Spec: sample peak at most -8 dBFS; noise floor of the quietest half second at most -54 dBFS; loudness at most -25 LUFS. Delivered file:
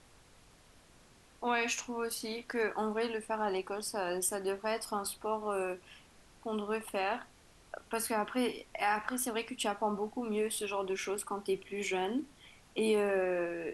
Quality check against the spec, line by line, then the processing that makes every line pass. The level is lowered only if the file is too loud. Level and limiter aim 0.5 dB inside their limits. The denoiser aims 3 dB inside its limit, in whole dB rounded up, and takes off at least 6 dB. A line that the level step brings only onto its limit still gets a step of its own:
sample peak -17.5 dBFS: OK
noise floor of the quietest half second -61 dBFS: OK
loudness -35.0 LUFS: OK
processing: none

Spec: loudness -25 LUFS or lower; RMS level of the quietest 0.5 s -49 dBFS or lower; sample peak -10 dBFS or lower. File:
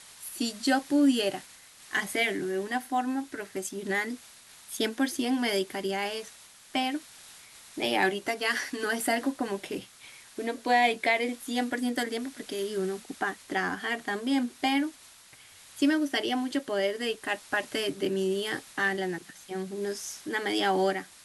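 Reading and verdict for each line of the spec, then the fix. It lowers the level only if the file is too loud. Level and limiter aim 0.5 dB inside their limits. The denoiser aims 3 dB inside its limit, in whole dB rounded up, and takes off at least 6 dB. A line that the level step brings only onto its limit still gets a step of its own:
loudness -29.5 LUFS: OK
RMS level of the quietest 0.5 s -53 dBFS: OK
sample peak -12.5 dBFS: OK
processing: none

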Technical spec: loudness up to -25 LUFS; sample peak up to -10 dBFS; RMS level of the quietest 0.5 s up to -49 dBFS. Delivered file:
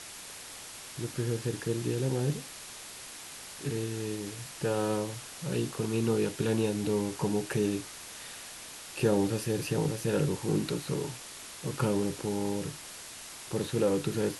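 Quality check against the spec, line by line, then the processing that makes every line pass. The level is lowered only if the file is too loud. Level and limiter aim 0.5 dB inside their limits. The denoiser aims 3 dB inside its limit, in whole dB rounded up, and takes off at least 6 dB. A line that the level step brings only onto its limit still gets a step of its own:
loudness -32.5 LUFS: OK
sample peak -13.5 dBFS: OK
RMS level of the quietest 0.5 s -45 dBFS: fail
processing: denoiser 7 dB, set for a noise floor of -45 dBFS

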